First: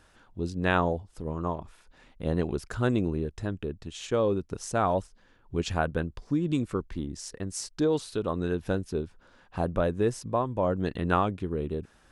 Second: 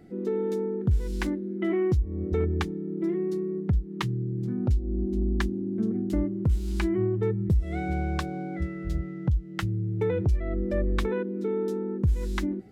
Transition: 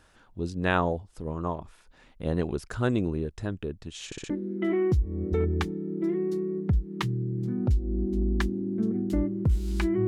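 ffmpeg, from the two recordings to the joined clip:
ffmpeg -i cue0.wav -i cue1.wav -filter_complex "[0:a]apad=whole_dur=10.07,atrim=end=10.07,asplit=4[link_01][link_02][link_03][link_04];[link_01]atrim=end=4.122[link_05];[link_02]atrim=start=4.058:end=4.122[link_06];[link_03]atrim=start=4.058:end=4.122[link_07];[link_04]atrim=start=4.058:end=4.122[link_08];[1:a]atrim=start=1.298:end=7.07[link_09];[link_05][link_06]acrossfade=duration=0.004:curve1=hsin:curve2=hsin[link_10];[link_10][link_07]acrossfade=duration=0.004:curve1=hsin:curve2=hsin[link_11];[link_11][link_08]acrossfade=duration=0.004:curve1=hsin:curve2=hsin[link_12];[link_12][link_09]acrossfade=duration=0.004:curve1=hsin:curve2=hsin" out.wav

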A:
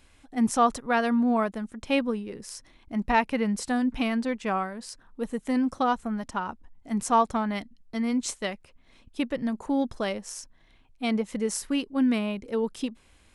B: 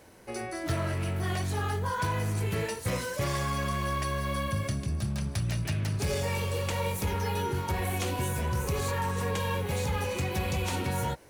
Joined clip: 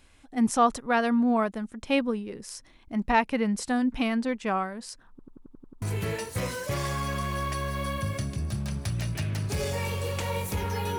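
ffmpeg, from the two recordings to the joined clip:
ffmpeg -i cue0.wav -i cue1.wav -filter_complex "[0:a]apad=whole_dur=10.98,atrim=end=10.98,asplit=8[link_01][link_02][link_03][link_04][link_05][link_06][link_07][link_08];[link_01]atrim=end=5.192[link_09];[link_02]atrim=start=5.098:end=5.192[link_10];[link_03]atrim=start=5.098:end=5.192[link_11];[link_04]atrim=start=5.098:end=5.192[link_12];[link_05]atrim=start=5.098:end=5.192[link_13];[link_06]atrim=start=5.098:end=5.192[link_14];[link_07]atrim=start=5.098:end=5.192[link_15];[link_08]atrim=start=5.098:end=5.192[link_16];[1:a]atrim=start=2.318:end=7.48[link_17];[link_09][link_10]acrossfade=duration=0.004:curve1=hsin:curve2=hsin[link_18];[link_18][link_11]acrossfade=duration=0.004:curve1=hsin:curve2=hsin[link_19];[link_19][link_12]acrossfade=duration=0.004:curve1=hsin:curve2=hsin[link_20];[link_20][link_13]acrossfade=duration=0.004:curve1=hsin:curve2=hsin[link_21];[link_21][link_14]acrossfade=duration=0.004:curve1=hsin:curve2=hsin[link_22];[link_22][link_15]acrossfade=duration=0.004:curve1=hsin:curve2=hsin[link_23];[link_23][link_16]acrossfade=duration=0.004:curve1=hsin:curve2=hsin[link_24];[link_24][link_17]acrossfade=duration=0.004:curve1=hsin:curve2=hsin" out.wav

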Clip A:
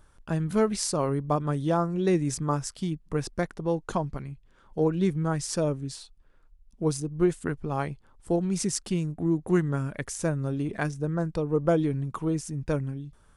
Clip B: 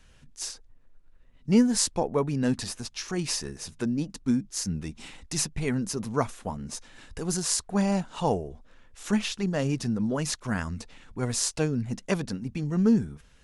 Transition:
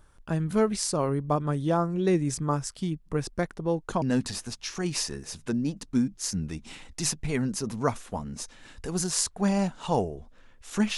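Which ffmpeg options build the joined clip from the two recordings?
ffmpeg -i cue0.wav -i cue1.wav -filter_complex "[0:a]apad=whole_dur=10.97,atrim=end=10.97,atrim=end=4.022[link_01];[1:a]atrim=start=2.348:end=9.3[link_02];[link_01][link_02]acrossfade=duration=0.004:curve1=hsin:curve2=hsin" out.wav

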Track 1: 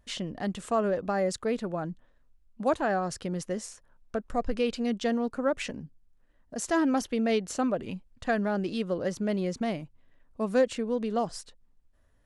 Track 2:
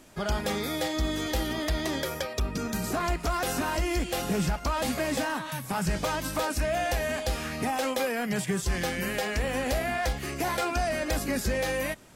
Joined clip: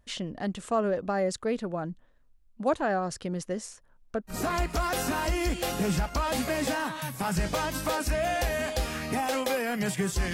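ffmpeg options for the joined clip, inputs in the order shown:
ffmpeg -i cue0.wav -i cue1.wav -filter_complex "[0:a]apad=whole_dur=10.33,atrim=end=10.33,atrim=end=4.39,asetpts=PTS-STARTPTS[link_01];[1:a]atrim=start=2.77:end=8.83,asetpts=PTS-STARTPTS[link_02];[link_01][link_02]acrossfade=duration=0.12:curve1=tri:curve2=tri" out.wav

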